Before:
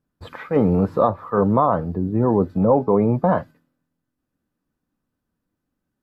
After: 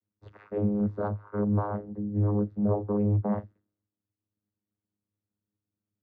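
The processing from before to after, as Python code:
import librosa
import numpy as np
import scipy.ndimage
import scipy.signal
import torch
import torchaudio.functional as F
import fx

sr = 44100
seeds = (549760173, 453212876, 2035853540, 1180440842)

y = fx.vocoder(x, sr, bands=16, carrier='saw', carrier_hz=103.0)
y = y * librosa.db_to_amplitude(-8.0)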